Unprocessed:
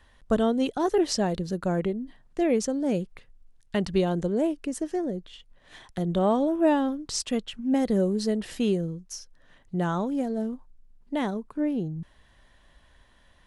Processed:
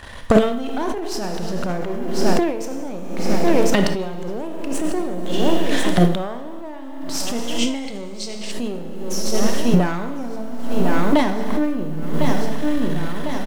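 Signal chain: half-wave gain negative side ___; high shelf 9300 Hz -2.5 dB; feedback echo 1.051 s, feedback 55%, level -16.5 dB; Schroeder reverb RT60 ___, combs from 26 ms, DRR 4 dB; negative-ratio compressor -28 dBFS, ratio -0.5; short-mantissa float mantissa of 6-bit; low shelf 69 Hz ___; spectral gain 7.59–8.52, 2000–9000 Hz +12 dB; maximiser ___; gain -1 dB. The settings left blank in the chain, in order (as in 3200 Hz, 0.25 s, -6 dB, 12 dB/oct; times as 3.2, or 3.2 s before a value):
-12 dB, 1.5 s, -8.5 dB, +20 dB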